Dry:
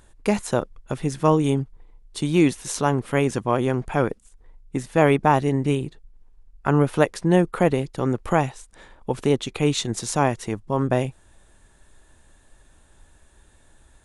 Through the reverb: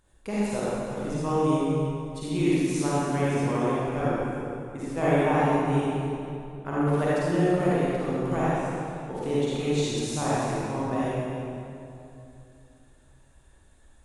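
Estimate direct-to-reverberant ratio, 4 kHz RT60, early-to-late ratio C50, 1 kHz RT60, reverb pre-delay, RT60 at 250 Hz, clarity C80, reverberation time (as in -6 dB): -9.5 dB, 2.0 s, -7.0 dB, 2.6 s, 39 ms, 3.2 s, -4.0 dB, 2.7 s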